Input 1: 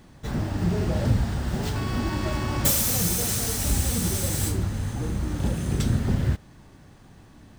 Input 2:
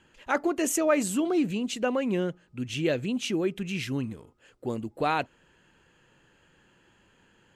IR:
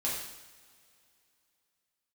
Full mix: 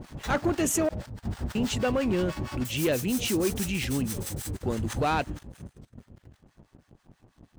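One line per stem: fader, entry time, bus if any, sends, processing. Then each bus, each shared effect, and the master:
5.08 s -3.5 dB -> 5.63 s -14 dB, 0.00 s, no send, negative-ratio compressor -34 dBFS, ratio -1; harmonic tremolo 6.2 Hz, depth 100%, crossover 790 Hz
-5.5 dB, 0.00 s, muted 0.89–1.55, no send, gate -54 dBFS, range -20 dB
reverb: off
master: sample leveller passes 2

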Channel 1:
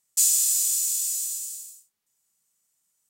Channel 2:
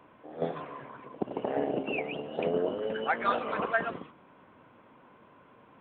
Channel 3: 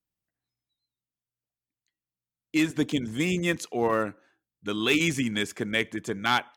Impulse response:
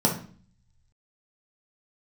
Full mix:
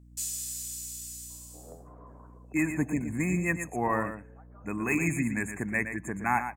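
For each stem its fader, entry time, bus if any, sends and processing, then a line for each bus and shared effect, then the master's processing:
-6.5 dB, 0.00 s, no send, echo send -18 dB, high shelf 3200 Hz -9 dB
-8.0 dB, 1.30 s, no send, no echo send, LPF 1200 Hz 24 dB/oct; compressor 5:1, threshold -39 dBFS, peak gain reduction 13.5 dB; auto duck -9 dB, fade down 0.25 s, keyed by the third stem
-2.5 dB, 0.00 s, no send, echo send -9 dB, FFT band-reject 2600–6500 Hz; comb 1.1 ms, depth 53%; hum 60 Hz, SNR 21 dB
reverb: off
echo: echo 0.117 s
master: dry

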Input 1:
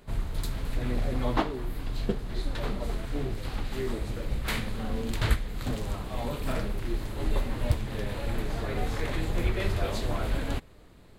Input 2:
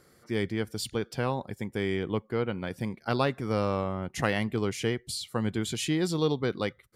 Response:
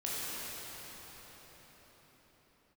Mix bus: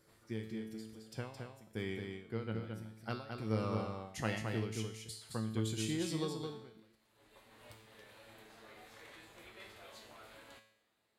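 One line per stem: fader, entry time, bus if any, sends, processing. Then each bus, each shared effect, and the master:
-6.0 dB, 0.00 s, no send, no echo send, HPF 940 Hz 6 dB/oct; auto duck -14 dB, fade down 0.35 s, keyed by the second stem
+2.5 dB, 0.00 s, no send, echo send -5 dB, bell 960 Hz -3 dB 2.5 oct; ending taper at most 120 dB/s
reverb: off
echo: echo 0.218 s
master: resonator 110 Hz, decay 0.72 s, harmonics all, mix 80%

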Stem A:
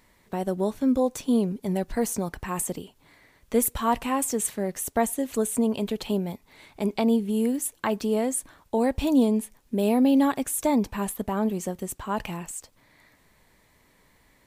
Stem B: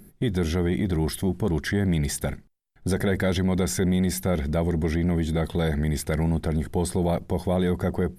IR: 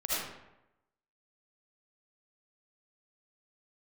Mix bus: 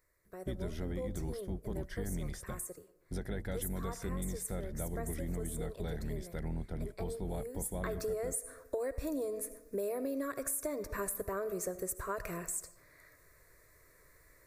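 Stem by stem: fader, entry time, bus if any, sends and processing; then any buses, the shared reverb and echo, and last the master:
7.48 s -13.5 dB -> 8.03 s -0.5 dB, 0.00 s, send -21 dB, high shelf 11000 Hz +5 dB; fixed phaser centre 840 Hz, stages 6
-3.5 dB, 0.25 s, no send, octaver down 2 oct, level +1 dB; upward expander 1.5:1, over -38 dBFS; auto duck -10 dB, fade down 0.30 s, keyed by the first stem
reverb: on, RT60 0.90 s, pre-delay 35 ms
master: compressor 10:1, threshold -33 dBFS, peak gain reduction 11.5 dB

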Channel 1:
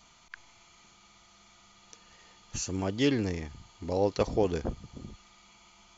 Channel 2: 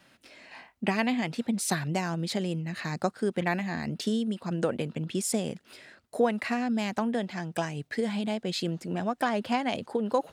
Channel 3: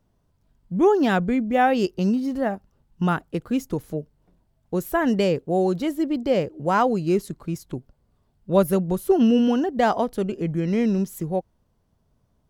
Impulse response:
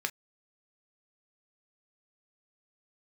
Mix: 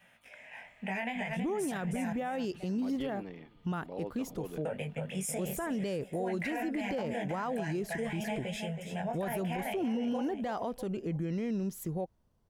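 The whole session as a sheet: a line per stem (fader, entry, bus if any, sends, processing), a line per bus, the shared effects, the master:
-11.0 dB, 0.00 s, no send, echo send -24 dB, elliptic band-pass 140–3400 Hz; hard clip -15 dBFS, distortion -38 dB
0.0 dB, 0.00 s, muted 2.13–4.65, send -10 dB, echo send -5.5 dB, fixed phaser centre 1200 Hz, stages 6; chorus 0.49 Hz, delay 17.5 ms, depth 3.6 ms
-5.5 dB, 0.65 s, no send, no echo send, dry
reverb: on, pre-delay 3 ms
echo: feedback echo 0.324 s, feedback 27%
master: limiter -26.5 dBFS, peak gain reduction 16 dB

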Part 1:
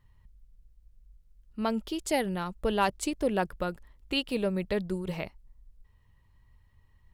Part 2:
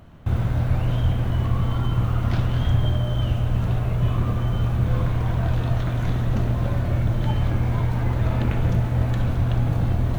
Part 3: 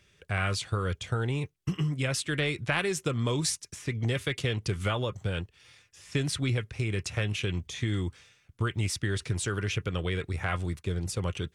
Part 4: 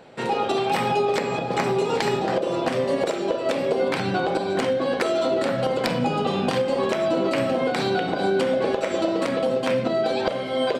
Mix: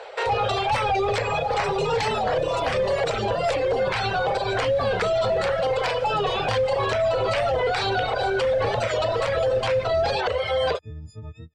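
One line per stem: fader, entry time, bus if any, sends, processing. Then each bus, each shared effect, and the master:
-3.0 dB, 0.50 s, bus A, no send, dry
-17.5 dB, 0.00 s, no bus, no send, bit-crush 5-bit
-18.0 dB, 0.00 s, no bus, no send, frequency quantiser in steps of 6 st; tilt -4 dB/oct
0.0 dB, 0.00 s, bus A, no send, elliptic high-pass 440 Hz; sine folder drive 7 dB, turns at -9 dBFS
bus A: 0.0 dB, reverb removal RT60 1.1 s; limiter -17 dBFS, peak gain reduction 9.5 dB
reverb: off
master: LPF 6500 Hz 12 dB/oct; record warp 45 rpm, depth 100 cents

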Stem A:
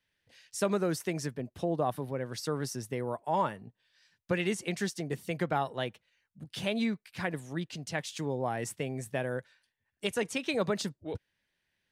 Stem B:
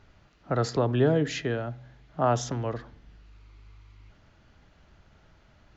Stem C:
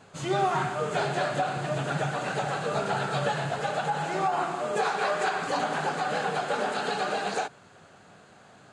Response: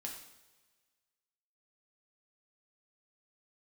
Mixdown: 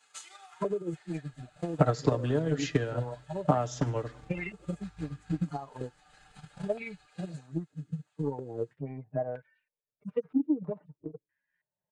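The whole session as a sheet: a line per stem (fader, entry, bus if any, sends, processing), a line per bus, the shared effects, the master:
-5.0 dB, 0.00 s, bus A, no send, median-filter separation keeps harmonic; stepped low-pass 3.1 Hz 300–2400 Hz
0.0 dB, 1.30 s, no bus, send -11.5 dB, gate -50 dBFS, range -10 dB; compressor 2.5:1, threshold -35 dBFS, peak gain reduction 12 dB
-9.0 dB, 0.00 s, bus A, send -11 dB, Bessel high-pass 1800 Hz, order 2; comb 2.4 ms, depth 46%; compressor 6:1, threshold -42 dBFS, peak gain reduction 12.5 dB; auto duck -13 dB, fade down 1.35 s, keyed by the first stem
bus A: 0.0 dB, low shelf 190 Hz -3.5 dB; limiter -29 dBFS, peak gain reduction 11.5 dB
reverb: on, pre-delay 3 ms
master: bell 9200 Hz +5 dB 1.1 oct; comb 6.7 ms, depth 59%; transient shaper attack +10 dB, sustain -5 dB

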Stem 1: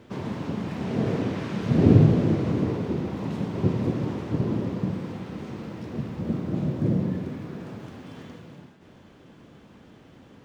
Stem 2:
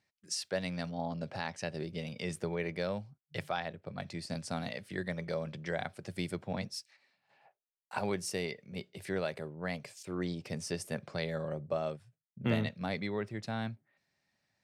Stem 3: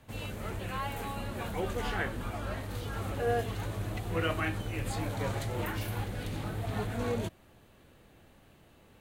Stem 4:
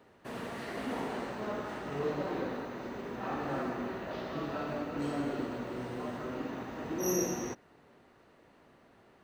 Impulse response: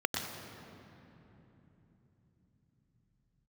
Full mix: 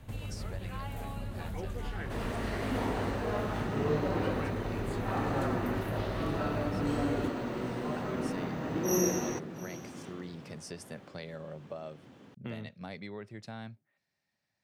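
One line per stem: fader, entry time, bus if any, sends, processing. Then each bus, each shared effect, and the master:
-3.5 dB, 1.90 s, bus A, no send, no echo send, HPF 120 Hz
-4.5 dB, 0.00 s, bus A, no send, no echo send, dry
+1.0 dB, 0.00 s, bus A, no send, no echo send, low shelf 180 Hz +10.5 dB
+2.5 dB, 1.85 s, no bus, no send, echo send -19.5 dB, dry
bus A: 0.0 dB, compressor 2.5:1, threshold -39 dBFS, peak gain reduction 16 dB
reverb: off
echo: echo 0.705 s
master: dry

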